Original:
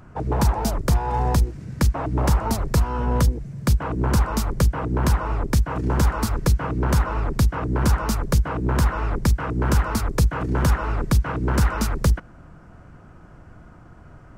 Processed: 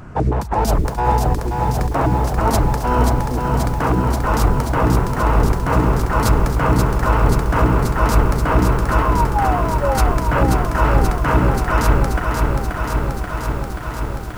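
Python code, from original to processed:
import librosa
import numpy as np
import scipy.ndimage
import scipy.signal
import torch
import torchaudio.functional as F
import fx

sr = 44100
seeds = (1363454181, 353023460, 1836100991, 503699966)

y = fx.spec_paint(x, sr, seeds[0], shape='fall', start_s=9.02, length_s=0.96, low_hz=510.0, high_hz=1100.0, level_db=-22.0)
y = fx.over_compress(y, sr, threshold_db=-23.0, ratio=-0.5)
y = fx.echo_crushed(y, sr, ms=532, feedback_pct=80, bits=8, wet_db=-4.5)
y = y * 10.0 ** (5.5 / 20.0)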